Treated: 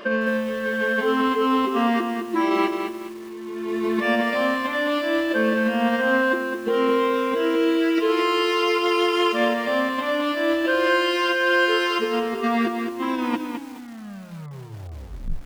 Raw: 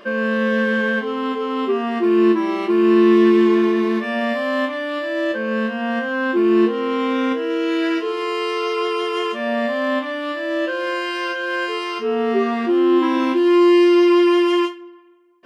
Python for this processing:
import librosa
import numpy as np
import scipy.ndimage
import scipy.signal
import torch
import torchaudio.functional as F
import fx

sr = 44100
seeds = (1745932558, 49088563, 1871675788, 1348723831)

y = fx.tape_stop_end(x, sr, length_s=2.33)
y = fx.dereverb_blind(y, sr, rt60_s=0.53)
y = fx.over_compress(y, sr, threshold_db=-23.0, ratio=-0.5)
y = fx.hum_notches(y, sr, base_hz=60, count=3)
y = fx.echo_crushed(y, sr, ms=212, feedback_pct=35, bits=7, wet_db=-6.0)